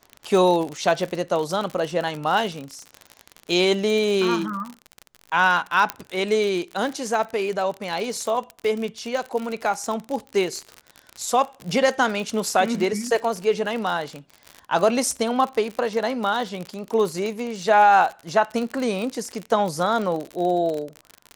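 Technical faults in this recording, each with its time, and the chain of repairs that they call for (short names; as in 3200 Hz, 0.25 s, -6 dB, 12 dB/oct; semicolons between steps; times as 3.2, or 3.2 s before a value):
crackle 50/s -26 dBFS
5.9 pop -7 dBFS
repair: de-click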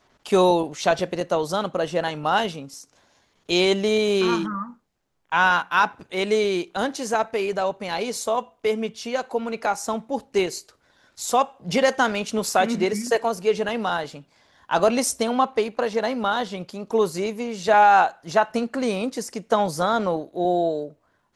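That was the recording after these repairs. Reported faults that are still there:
none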